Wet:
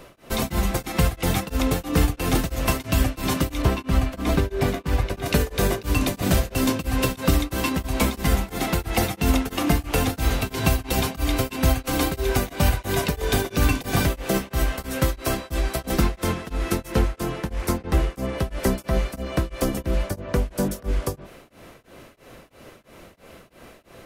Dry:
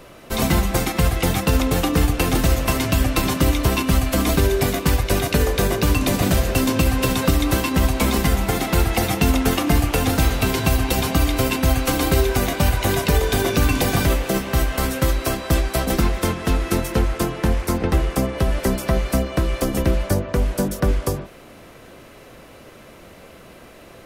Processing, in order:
0:03.62–0:05.26: high-shelf EQ 4,700 Hz −11.5 dB
tremolo along a rectified sine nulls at 3 Hz
level −1 dB

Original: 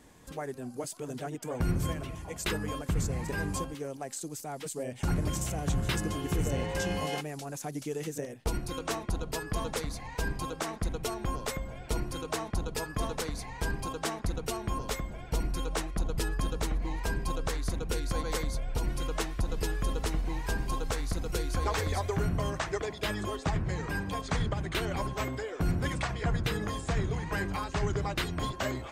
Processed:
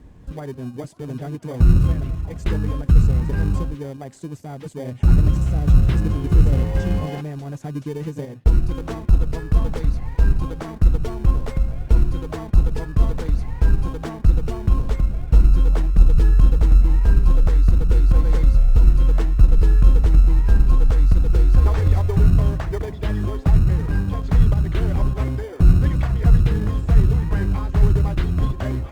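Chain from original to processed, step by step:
RIAA equalisation playback
in parallel at −11 dB: decimation without filtering 33×
on the sum: Opus 64 kbit/s 48,000 Hz

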